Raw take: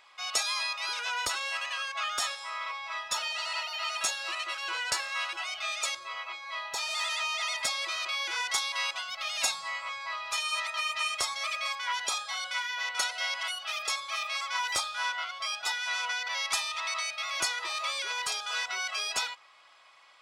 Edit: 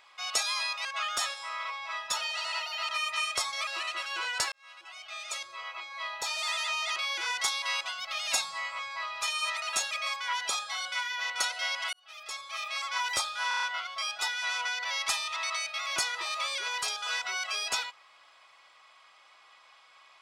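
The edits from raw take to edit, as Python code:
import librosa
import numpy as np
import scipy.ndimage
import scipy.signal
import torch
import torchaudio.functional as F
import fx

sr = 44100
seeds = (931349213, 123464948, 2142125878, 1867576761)

y = fx.edit(x, sr, fx.cut(start_s=0.85, length_s=1.01),
    fx.swap(start_s=3.9, length_s=0.29, other_s=10.72, other_length_s=0.78),
    fx.fade_in_span(start_s=5.04, length_s=1.46),
    fx.cut(start_s=7.48, length_s=0.58),
    fx.fade_in_span(start_s=13.52, length_s=0.95),
    fx.stutter(start_s=15.07, slice_s=0.03, count=6), tone=tone)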